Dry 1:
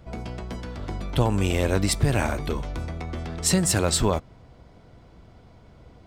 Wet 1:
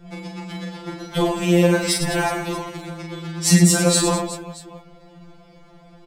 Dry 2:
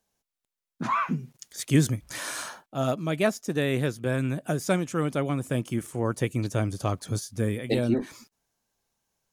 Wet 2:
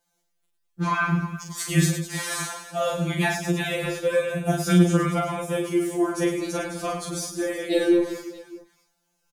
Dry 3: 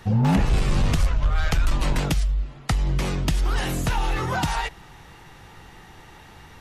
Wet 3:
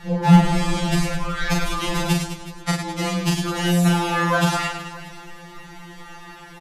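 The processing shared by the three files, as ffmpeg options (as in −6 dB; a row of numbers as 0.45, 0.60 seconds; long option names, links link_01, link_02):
-af "aecho=1:1:40|104|206.4|370.2|632.4:0.631|0.398|0.251|0.158|0.1,afftfilt=real='re*2.83*eq(mod(b,8),0)':imag='im*2.83*eq(mod(b,8),0)':win_size=2048:overlap=0.75,volume=5.5dB"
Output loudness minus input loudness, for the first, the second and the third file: +6.5, +3.5, +3.5 LU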